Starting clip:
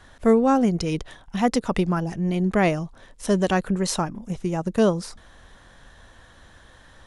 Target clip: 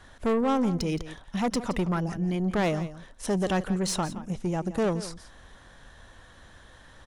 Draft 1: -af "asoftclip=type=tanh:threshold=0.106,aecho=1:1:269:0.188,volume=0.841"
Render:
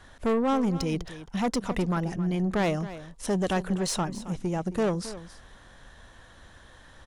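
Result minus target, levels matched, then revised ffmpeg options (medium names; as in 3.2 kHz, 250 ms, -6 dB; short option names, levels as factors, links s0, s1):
echo 99 ms late
-af "asoftclip=type=tanh:threshold=0.106,aecho=1:1:170:0.188,volume=0.841"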